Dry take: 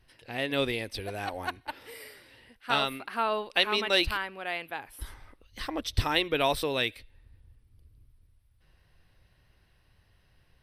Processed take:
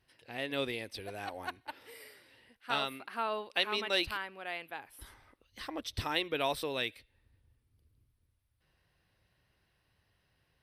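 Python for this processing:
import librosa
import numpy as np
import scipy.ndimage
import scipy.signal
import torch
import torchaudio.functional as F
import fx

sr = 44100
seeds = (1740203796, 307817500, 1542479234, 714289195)

y = fx.highpass(x, sr, hz=120.0, slope=6)
y = y * librosa.db_to_amplitude(-6.0)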